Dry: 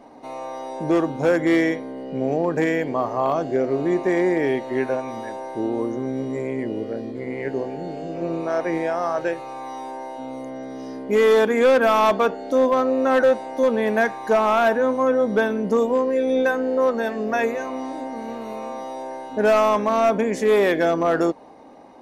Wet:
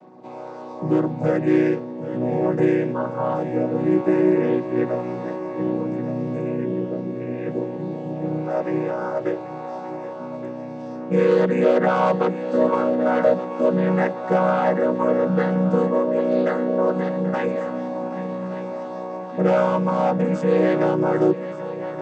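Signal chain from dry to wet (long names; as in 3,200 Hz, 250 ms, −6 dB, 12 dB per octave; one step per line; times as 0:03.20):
channel vocoder with a chord as carrier major triad, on B2
high-shelf EQ 4,900 Hz +4.5 dB
echo machine with several playback heads 391 ms, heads second and third, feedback 55%, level −14.5 dB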